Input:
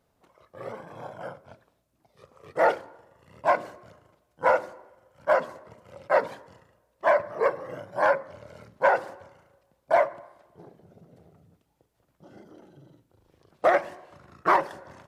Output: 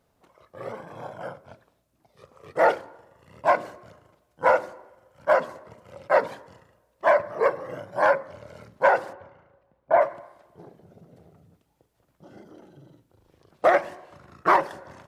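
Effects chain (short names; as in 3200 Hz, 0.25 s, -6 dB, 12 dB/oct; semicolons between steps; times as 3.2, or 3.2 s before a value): 9.12–10 LPF 2800 Hz -> 1700 Hz 12 dB/oct; gain +2 dB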